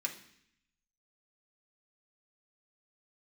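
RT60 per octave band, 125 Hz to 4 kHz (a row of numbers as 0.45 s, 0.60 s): 1.0 s, 0.90 s, 0.65 s, 0.65 s, 0.85 s, 0.80 s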